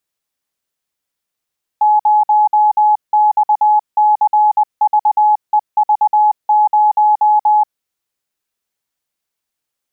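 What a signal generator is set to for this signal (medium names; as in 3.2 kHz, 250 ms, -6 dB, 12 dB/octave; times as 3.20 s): Morse "0XCVEV0" 20 wpm 846 Hz -7.5 dBFS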